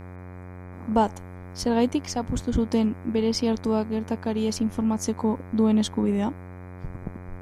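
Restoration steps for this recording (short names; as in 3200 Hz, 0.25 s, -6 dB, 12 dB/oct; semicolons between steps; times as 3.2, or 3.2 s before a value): de-hum 90.7 Hz, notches 27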